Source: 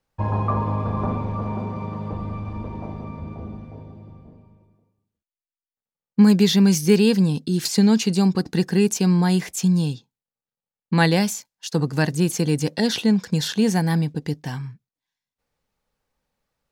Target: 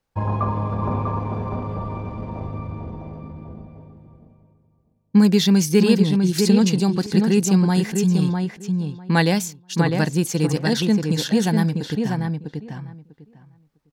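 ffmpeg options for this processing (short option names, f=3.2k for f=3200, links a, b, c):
-filter_complex "[0:a]asplit=2[a][b];[b]adelay=778,lowpass=f=2.2k:p=1,volume=-4dB,asplit=2[c][d];[d]adelay=778,lowpass=f=2.2k:p=1,volume=0.16,asplit=2[e][f];[f]adelay=778,lowpass=f=2.2k:p=1,volume=0.16[g];[a][c][e][g]amix=inputs=4:normalize=0,atempo=1.2"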